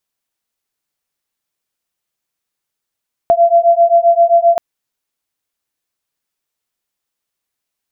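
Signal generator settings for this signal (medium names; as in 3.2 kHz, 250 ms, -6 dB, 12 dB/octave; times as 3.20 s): beating tones 678 Hz, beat 7.6 Hz, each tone -10 dBFS 1.28 s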